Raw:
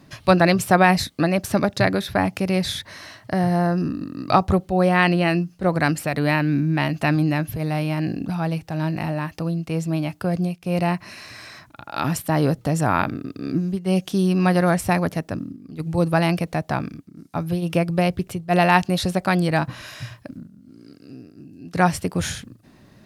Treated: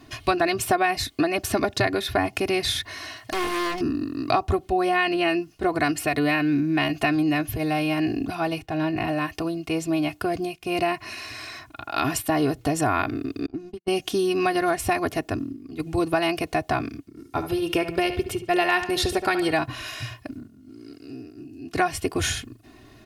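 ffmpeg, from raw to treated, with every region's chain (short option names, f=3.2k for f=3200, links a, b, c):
-filter_complex "[0:a]asettb=1/sr,asplit=3[a][b][c];[a]atrim=end=3.164[d];[b]atrim=start=3.16:end=3.81,asetpts=PTS-STARTPTS,afade=t=in:d=0.004:c=qsin,afade=t=out:st=0.646:d=0.004:c=qsin,tiltshelf=f=940:g=-4,aeval=exprs='0.0708*(abs(mod(val(0)/0.0708+3,4)-2)-1)':c=same[e];[c]atrim=start=3.806[f];[d][e]acrossfade=d=0.004:c1=hsin:c2=qsin[g];[g][f]acrossfade=d=0.004:c1=qsin:c2=hsin,asettb=1/sr,asplit=3[h][i][j];[h]atrim=end=8.624[k];[i]atrim=start=8.62:end=9.08,asetpts=PTS-STARTPTS,afade=t=in:d=0.004:c=qsin,afade=t=out:st=0.456:d=0.004:c=qsin,agate=range=-33dB:threshold=-50dB:ratio=3:release=100:detection=peak,bass=f=250:g=1,treble=f=4k:g=-8[l];[j]atrim=start=9.076[m];[k][l]acrossfade=d=0.004:c1=hsin:c2=qsin[n];[n][m]acrossfade=d=0.004:c1=qsin:c2=hsin,asettb=1/sr,asplit=3[o][p][q];[o]atrim=end=13.464[r];[p]atrim=start=13.46:end=13.88,asetpts=PTS-STARTPTS,afade=t=in:d=0.004:c=qsin,afade=t=out:st=0.416:d=0.004:c=qsin,agate=range=-44dB:threshold=-24dB:ratio=16:release=100:detection=peak,highshelf=f=10k:g=-10.5,acompressor=threshold=-29dB:ratio=5:attack=3.2:release=140:knee=1:detection=peak[s];[q]atrim=start=13.876[t];[r][s]acrossfade=d=0.004:c1=hsin:c2=qsin[u];[u][t]acrossfade=d=0.004:c1=qsin:c2=hsin,asettb=1/sr,asplit=3[v][w][x];[v]atrim=end=17.094[y];[w]atrim=start=17.09:end=19.53,asetpts=PTS-STARTPTS,afade=t=in:d=0.004:c=qsin,afade=t=out:st=2.436:d=0.004:c=qsin,aecho=1:1:2.2:0.38,atrim=end_sample=107604,asplit=2[z][aa];[aa]adelay=70,lowpass=f=4.7k:p=1,volume=-11dB,asplit=2[ab][ac];[ac]adelay=70,lowpass=f=4.7k:p=1,volume=0.36,asplit=2[ad][ae];[ae]adelay=70,lowpass=f=4.7k:p=1,volume=0.36,asplit=2[af][ag];[ag]adelay=70,lowpass=f=4.7k:p=1,volume=0.36[ah];[z][ab][ad][af][ah]amix=inputs=5:normalize=0,atrim=end_sample=107604[ai];[x]atrim=start=19.526[aj];[y][ai]acrossfade=d=0.004:c1=hsin:c2=qsin[ak];[ak][aj]acrossfade=d=0.004:c1=qsin:c2=hsin,equalizer=f=2.7k:t=o:w=0.5:g=4,aecho=1:1:2.8:0.87,acompressor=threshold=-19dB:ratio=4"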